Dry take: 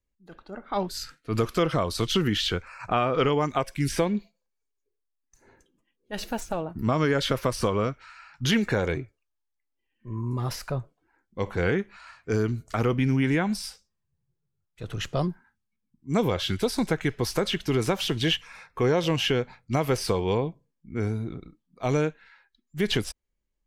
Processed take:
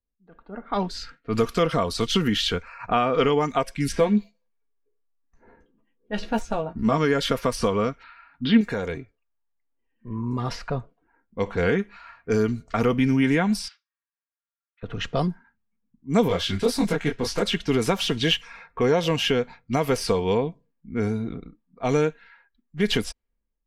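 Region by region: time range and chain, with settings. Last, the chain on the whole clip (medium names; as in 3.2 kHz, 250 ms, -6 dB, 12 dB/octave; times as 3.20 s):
3.92–6.98 s: de-esser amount 95% + doubling 14 ms -6.5 dB
8.03–8.61 s: steep low-pass 4.8 kHz 72 dB/octave + small resonant body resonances 260/3600 Hz, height 13 dB
13.68–14.83 s: high-pass 1.3 kHz 24 dB/octave + distance through air 180 m
16.28–17.43 s: waveshaping leveller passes 1 + detune thickener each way 59 cents
whole clip: comb 4.3 ms, depth 41%; level-controlled noise filter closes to 1.5 kHz, open at -21.5 dBFS; level rider gain up to 10 dB; trim -6.5 dB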